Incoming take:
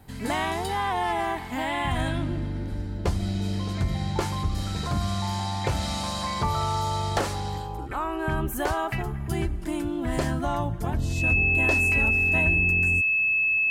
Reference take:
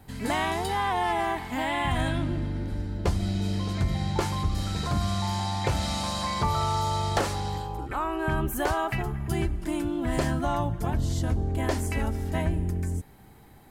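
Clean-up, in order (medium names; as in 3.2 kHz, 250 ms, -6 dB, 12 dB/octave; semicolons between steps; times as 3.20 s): band-stop 2.6 kHz, Q 30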